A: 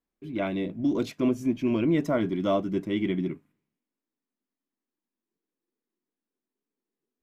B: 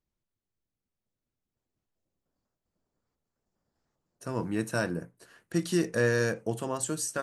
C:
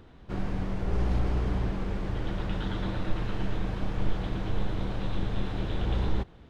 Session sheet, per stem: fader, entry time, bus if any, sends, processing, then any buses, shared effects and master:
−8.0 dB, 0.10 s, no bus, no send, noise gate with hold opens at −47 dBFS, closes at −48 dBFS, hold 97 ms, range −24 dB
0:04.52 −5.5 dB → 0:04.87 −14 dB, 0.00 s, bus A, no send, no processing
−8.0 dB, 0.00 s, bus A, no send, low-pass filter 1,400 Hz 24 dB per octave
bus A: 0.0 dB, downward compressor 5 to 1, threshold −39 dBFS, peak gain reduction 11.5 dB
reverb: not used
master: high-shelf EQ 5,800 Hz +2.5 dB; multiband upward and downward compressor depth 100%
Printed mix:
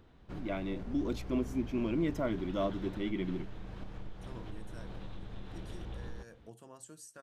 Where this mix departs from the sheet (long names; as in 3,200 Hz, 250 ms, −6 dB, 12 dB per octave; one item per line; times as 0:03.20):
stem B −5.5 dB → −12.0 dB
stem C: missing low-pass filter 1,400 Hz 24 dB per octave
master: missing multiband upward and downward compressor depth 100%